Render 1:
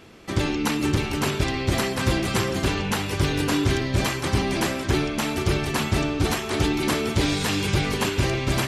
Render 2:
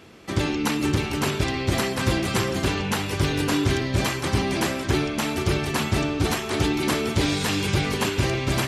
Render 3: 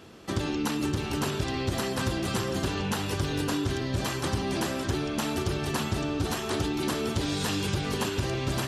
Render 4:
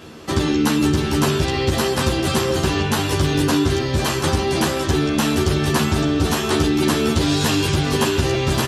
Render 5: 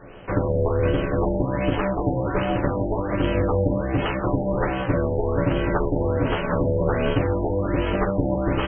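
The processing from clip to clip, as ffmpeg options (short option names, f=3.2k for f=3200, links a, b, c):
-af "highpass=51"
-af "equalizer=f=2.2k:t=o:w=0.36:g=-7,acompressor=threshold=-24dB:ratio=6,volume=-1dB"
-filter_complex "[0:a]asplit=2[a][b];[b]adelay=13,volume=-2dB[c];[a][c]amix=inputs=2:normalize=0,volume=8dB"
-af "aeval=exprs='val(0)*sin(2*PI*200*n/s)':c=same,afftfilt=real='re*lt(b*sr/1024,920*pow(3300/920,0.5+0.5*sin(2*PI*1.3*pts/sr)))':imag='im*lt(b*sr/1024,920*pow(3300/920,0.5+0.5*sin(2*PI*1.3*pts/sr)))':win_size=1024:overlap=0.75"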